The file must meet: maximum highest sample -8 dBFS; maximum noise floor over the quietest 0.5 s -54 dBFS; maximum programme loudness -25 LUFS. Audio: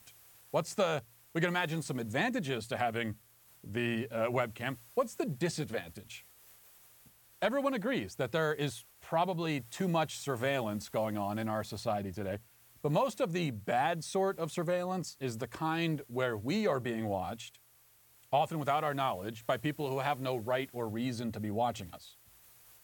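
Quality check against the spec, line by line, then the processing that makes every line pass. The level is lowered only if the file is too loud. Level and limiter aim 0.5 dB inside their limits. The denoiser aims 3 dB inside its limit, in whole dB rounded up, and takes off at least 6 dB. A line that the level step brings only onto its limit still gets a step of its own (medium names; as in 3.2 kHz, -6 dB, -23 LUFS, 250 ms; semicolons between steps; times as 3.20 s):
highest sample -17.5 dBFS: pass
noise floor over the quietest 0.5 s -64 dBFS: pass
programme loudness -34.0 LUFS: pass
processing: none needed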